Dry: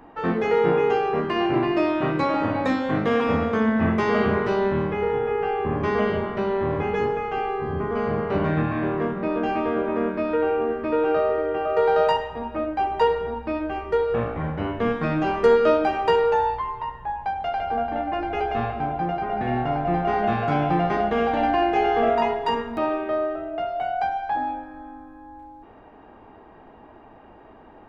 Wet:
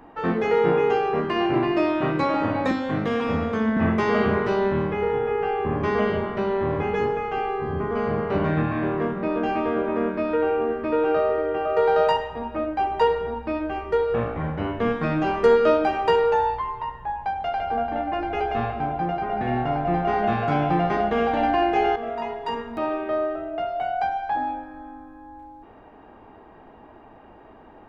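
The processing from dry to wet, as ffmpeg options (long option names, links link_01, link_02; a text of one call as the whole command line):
ffmpeg -i in.wav -filter_complex "[0:a]asettb=1/sr,asplit=3[link_01][link_02][link_03];[link_01]atrim=end=2.714[link_04];[link_02]atrim=start=2.71:end=3.77,asetpts=PTS-STARTPTS,afade=type=in:duration=0.004:curve=qsin,afade=type=out:start_time=1.056:duration=0.004:curve=qsin,acrossover=split=230|3000[link_05][link_06][link_07];[link_06]acompressor=threshold=-29dB:ratio=1.5:attack=3.2:release=140:knee=2.83:detection=peak[link_08];[link_05][link_08][link_07]amix=inputs=3:normalize=0[link_09];[link_03]atrim=start=3.766[link_10];[link_04][link_09]acrossfade=duration=0.004:curve1=hsin:curve2=qsin[link_11];[link_11][link_10]acrossfade=duration=0.004:curve1=qsin:curve2=hsin,asplit=2[link_12][link_13];[link_12]atrim=end=21.96,asetpts=PTS-STARTPTS,afade=type=out:start_time=21.956:duration=0.004:curve=hsin:silence=0.237137[link_14];[link_13]atrim=start=21.96,asetpts=PTS-STARTPTS,afade=type=in:duration=1.22:silence=0.237137[link_15];[link_14][link_15]concat=n=2:v=0:a=1" out.wav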